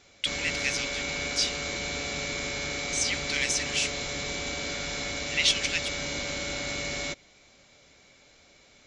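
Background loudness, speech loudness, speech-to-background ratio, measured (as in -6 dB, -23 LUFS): -31.0 LUFS, -28.5 LUFS, 2.5 dB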